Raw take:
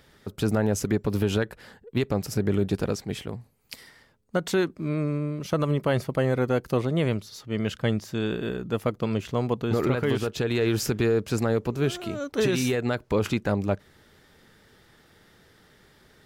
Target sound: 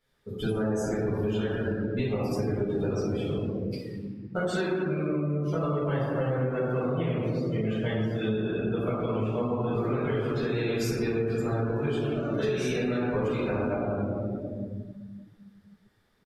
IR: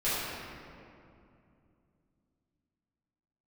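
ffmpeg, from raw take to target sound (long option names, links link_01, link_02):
-filter_complex "[0:a]equalizer=frequency=1000:width=1.2:gain=3,aresample=32000,aresample=44100,highshelf=frequency=4600:gain=5.5[link_01];[1:a]atrim=start_sample=2205[link_02];[link_01][link_02]afir=irnorm=-1:irlink=0,afftdn=noise_reduction=18:noise_floor=-27,acompressor=threshold=-18dB:ratio=6,volume=-7dB"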